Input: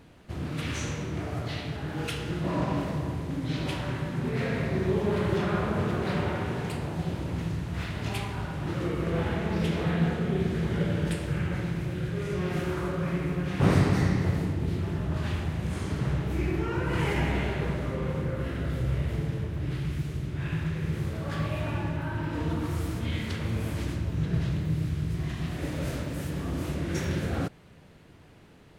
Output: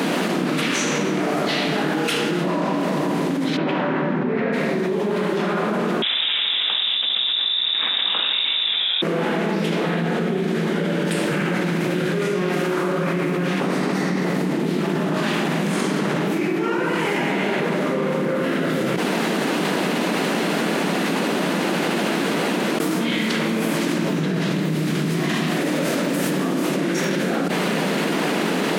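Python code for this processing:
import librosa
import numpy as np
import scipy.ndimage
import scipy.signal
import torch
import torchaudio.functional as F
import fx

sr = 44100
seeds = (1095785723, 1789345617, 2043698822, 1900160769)

y = fx.lowpass(x, sr, hz=1900.0, slope=12, at=(3.56, 4.52), fade=0.02)
y = fx.freq_invert(y, sr, carrier_hz=3700, at=(6.02, 9.02))
y = fx.edit(y, sr, fx.room_tone_fill(start_s=18.96, length_s=3.84), tone=tone)
y = scipy.signal.sosfilt(scipy.signal.butter(8, 180.0, 'highpass', fs=sr, output='sos'), y)
y = fx.env_flatten(y, sr, amount_pct=100)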